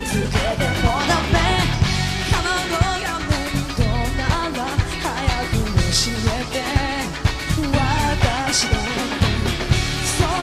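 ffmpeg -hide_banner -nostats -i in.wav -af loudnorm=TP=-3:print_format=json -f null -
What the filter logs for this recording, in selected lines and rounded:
"input_i" : "-19.9",
"input_tp" : "-5.8",
"input_lra" : "1.8",
"input_thresh" : "-29.9",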